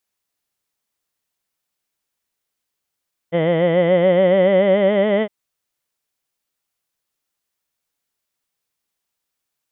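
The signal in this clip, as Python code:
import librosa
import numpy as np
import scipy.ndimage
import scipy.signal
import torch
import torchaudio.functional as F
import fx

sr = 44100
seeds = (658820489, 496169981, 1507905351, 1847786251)

y = fx.formant_vowel(sr, seeds[0], length_s=1.96, hz=163.0, glide_st=4.5, vibrato_hz=7.0, vibrato_st=0.9, f1_hz=560.0, f2_hz=2000.0, f3_hz=3100.0)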